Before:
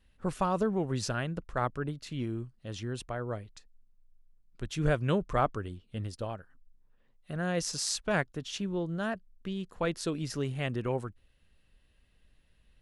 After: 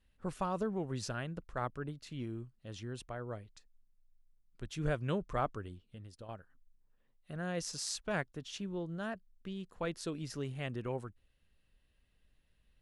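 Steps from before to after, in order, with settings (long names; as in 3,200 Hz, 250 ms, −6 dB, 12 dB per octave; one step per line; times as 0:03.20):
0:05.88–0:06.29: downward compressor 2 to 1, threshold −46 dBFS, peak gain reduction 8.5 dB
level −6.5 dB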